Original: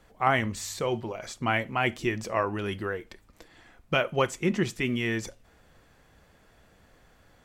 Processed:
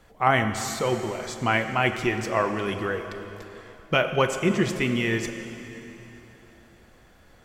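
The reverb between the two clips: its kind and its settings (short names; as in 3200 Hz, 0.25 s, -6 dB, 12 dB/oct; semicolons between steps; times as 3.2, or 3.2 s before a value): plate-style reverb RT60 3.5 s, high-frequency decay 0.9×, DRR 7 dB; gain +3 dB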